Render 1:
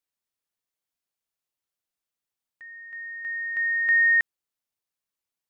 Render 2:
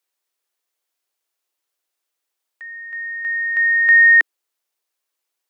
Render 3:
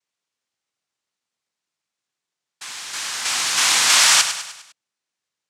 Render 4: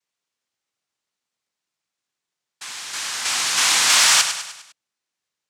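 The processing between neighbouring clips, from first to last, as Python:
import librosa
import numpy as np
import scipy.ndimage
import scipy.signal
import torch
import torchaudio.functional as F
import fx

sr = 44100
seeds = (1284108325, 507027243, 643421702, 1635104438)

y1 = scipy.signal.sosfilt(scipy.signal.butter(6, 310.0, 'highpass', fs=sr, output='sos'), x)
y1 = F.gain(torch.from_numpy(y1), 9.0).numpy()
y2 = fx.self_delay(y1, sr, depth_ms=0.13)
y2 = fx.noise_vocoder(y2, sr, seeds[0], bands=2)
y2 = fx.echo_feedback(y2, sr, ms=101, feedback_pct=49, wet_db=-9.5)
y2 = F.gain(torch.from_numpy(y2), -1.0).numpy()
y3 = 10.0 ** (-4.0 / 20.0) * np.tanh(y2 / 10.0 ** (-4.0 / 20.0))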